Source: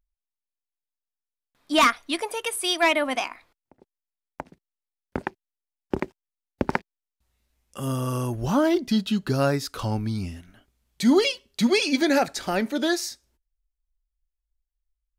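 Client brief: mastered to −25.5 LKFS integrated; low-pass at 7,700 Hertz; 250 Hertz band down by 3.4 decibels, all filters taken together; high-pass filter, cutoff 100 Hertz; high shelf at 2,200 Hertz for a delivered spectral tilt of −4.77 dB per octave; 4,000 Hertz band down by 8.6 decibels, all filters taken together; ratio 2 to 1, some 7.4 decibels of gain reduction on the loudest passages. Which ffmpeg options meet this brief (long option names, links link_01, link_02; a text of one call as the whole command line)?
ffmpeg -i in.wav -af "highpass=100,lowpass=7700,equalizer=frequency=250:width_type=o:gain=-4,highshelf=frequency=2200:gain=-5.5,equalizer=frequency=4000:width_type=o:gain=-6,acompressor=threshold=-31dB:ratio=2,volume=7.5dB" out.wav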